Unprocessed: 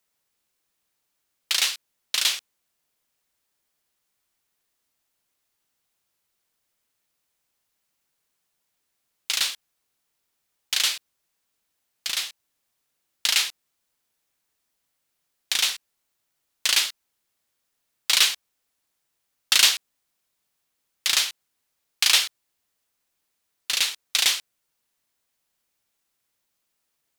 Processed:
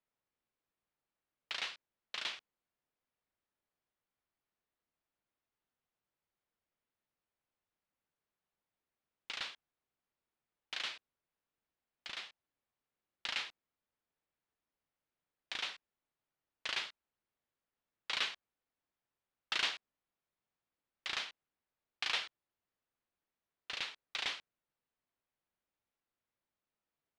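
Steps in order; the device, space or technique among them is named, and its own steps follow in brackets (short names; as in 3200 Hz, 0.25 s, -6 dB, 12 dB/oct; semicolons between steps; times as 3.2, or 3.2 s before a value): phone in a pocket (LPF 3700 Hz 12 dB/oct; high shelf 2200 Hz -10 dB); gain -7.5 dB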